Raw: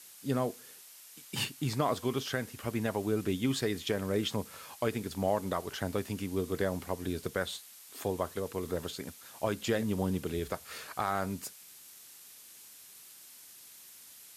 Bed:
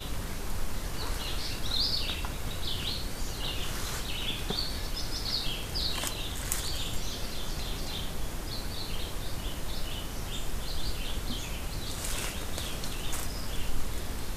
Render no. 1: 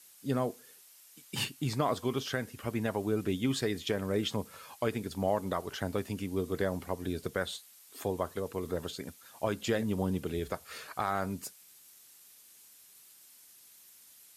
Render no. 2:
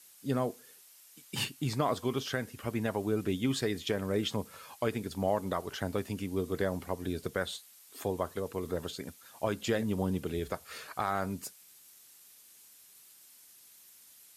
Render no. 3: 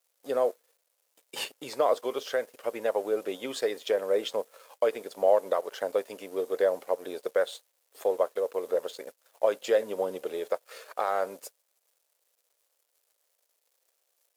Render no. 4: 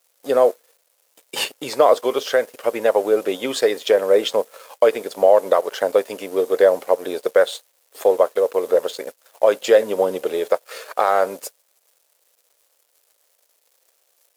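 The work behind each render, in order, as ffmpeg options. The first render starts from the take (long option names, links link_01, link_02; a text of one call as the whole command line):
ffmpeg -i in.wav -af "afftdn=noise_reduction=6:noise_floor=-53" out.wav
ffmpeg -i in.wav -af anull out.wav
ffmpeg -i in.wav -af "aeval=exprs='sgn(val(0))*max(abs(val(0))-0.00251,0)':channel_layout=same,highpass=frequency=520:width_type=q:width=4.1" out.wav
ffmpeg -i in.wav -af "volume=11dB,alimiter=limit=-3dB:level=0:latency=1" out.wav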